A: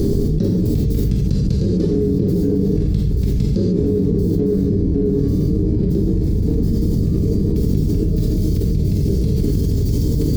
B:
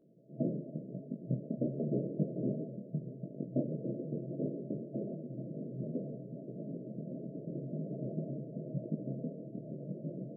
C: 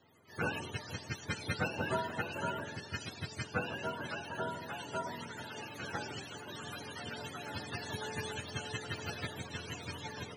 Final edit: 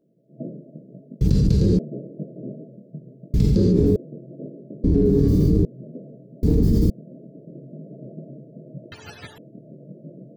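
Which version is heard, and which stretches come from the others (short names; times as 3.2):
B
1.21–1.79 from A
3.34–3.96 from A
4.84–5.65 from A
6.43–6.9 from A
8.92–9.38 from C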